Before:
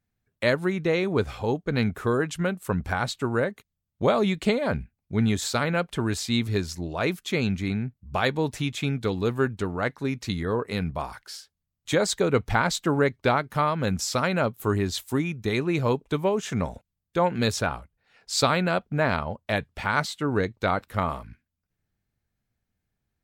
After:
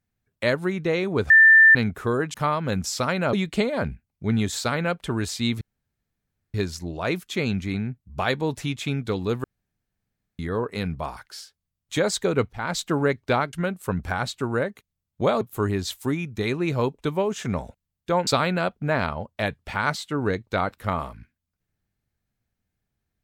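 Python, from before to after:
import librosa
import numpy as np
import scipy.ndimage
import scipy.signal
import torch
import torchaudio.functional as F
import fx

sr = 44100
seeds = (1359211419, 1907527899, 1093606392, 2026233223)

y = fx.edit(x, sr, fx.bleep(start_s=1.3, length_s=0.45, hz=1780.0, db=-9.0),
    fx.swap(start_s=2.34, length_s=1.88, other_s=13.49, other_length_s=0.99),
    fx.insert_room_tone(at_s=6.5, length_s=0.93),
    fx.room_tone_fill(start_s=9.4, length_s=0.95),
    fx.fade_in_from(start_s=12.48, length_s=0.27, floor_db=-23.0),
    fx.cut(start_s=17.34, length_s=1.03), tone=tone)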